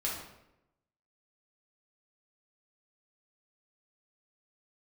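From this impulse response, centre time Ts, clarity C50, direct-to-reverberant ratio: 49 ms, 2.5 dB, -5.0 dB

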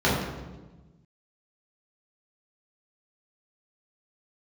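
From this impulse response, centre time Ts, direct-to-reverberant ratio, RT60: 68 ms, -8.0 dB, 1.2 s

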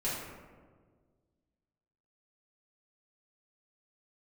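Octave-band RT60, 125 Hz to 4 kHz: 2.2 s, 2.0 s, 1.8 s, 1.4 s, 1.1 s, 0.70 s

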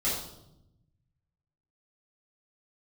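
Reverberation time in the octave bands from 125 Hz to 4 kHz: 1.9 s, 1.3 s, 0.95 s, 0.75 s, 0.55 s, 0.65 s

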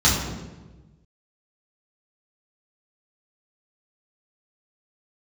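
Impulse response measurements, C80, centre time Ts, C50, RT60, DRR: 5.0 dB, 58 ms, 2.5 dB, 1.2 s, -8.0 dB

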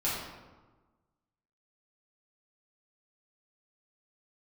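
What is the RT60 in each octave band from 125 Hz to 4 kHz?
1.5 s, 1.5 s, 1.3 s, 1.3 s, 0.95 s, 0.75 s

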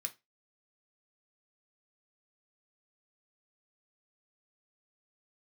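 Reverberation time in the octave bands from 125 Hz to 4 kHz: 0.25 s, 0.20 s, 0.25 s, 0.20 s, 0.20 s, 0.20 s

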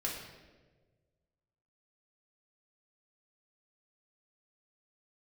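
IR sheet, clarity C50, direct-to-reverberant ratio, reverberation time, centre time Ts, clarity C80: 3.5 dB, -3.5 dB, 1.4 s, 52 ms, 5.5 dB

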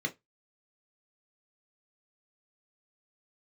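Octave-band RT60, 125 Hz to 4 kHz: 0.20 s, 0.15 s, 0.15 s, 0.15 s, 0.15 s, 0.15 s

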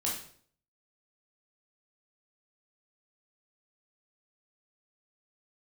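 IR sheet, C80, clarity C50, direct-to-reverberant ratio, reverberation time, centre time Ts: 9.0 dB, 4.5 dB, -4.5 dB, 0.55 s, 37 ms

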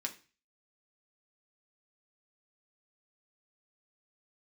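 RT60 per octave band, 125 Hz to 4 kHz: 0.50 s, 0.40 s, 0.35 s, 0.35 s, 0.40 s, 0.40 s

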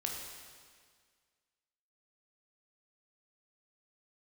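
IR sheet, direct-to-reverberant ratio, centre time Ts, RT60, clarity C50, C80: -0.5 dB, 74 ms, 1.8 s, 2.0 dB, 3.5 dB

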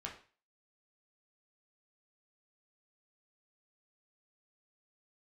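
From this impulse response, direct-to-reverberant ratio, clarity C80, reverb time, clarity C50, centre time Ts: -2.0 dB, 13.5 dB, 0.40 s, 8.5 dB, 22 ms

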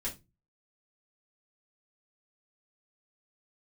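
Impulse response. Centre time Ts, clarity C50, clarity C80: 15 ms, 13.5 dB, 22.5 dB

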